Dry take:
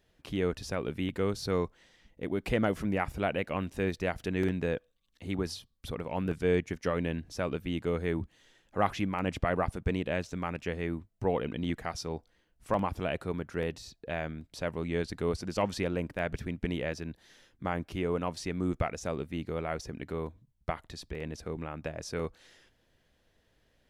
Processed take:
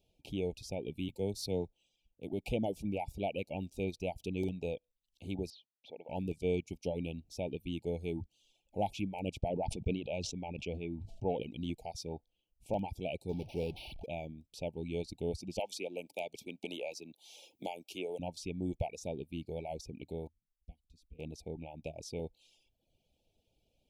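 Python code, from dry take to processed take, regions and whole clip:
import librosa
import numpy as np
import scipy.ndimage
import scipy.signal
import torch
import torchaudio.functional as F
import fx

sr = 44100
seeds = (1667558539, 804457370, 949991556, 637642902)

y = fx.chain(x, sr, fx.high_shelf(hz=7300.0, db=6.0),
    fx.band_widen(depth_pct=40), at=(1.08, 2.33))
y = fx.chain(y, sr, fx.highpass(hz=500.0, slope=12),
    fx.air_absorb(metres=250.0), at=(5.5, 6.09))
y = fx.chain(y, sr, fx.lowpass(hz=5200.0, slope=12),
    fx.sustainer(db_per_s=45.0), at=(9.48, 11.43))
y = fx.chain(y, sr, fx.zero_step(step_db=-34.0),
    fx.resample_linear(factor=6), at=(13.29, 14.06))
y = fx.chain(y, sr, fx.highpass(hz=400.0, slope=12),
    fx.high_shelf(hz=3400.0, db=7.0),
    fx.band_squash(depth_pct=70), at=(15.59, 18.19))
y = fx.chain(y, sr, fx.tone_stack(knobs='10-0-1'),
    fx.comb(ms=4.1, depth=0.73), at=(20.27, 21.19))
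y = fx.dereverb_blind(y, sr, rt60_s=0.75)
y = scipy.signal.sosfilt(scipy.signal.cheby1(5, 1.0, [880.0, 2300.0], 'bandstop', fs=sr, output='sos'), y)
y = y * 10.0 ** (-4.0 / 20.0)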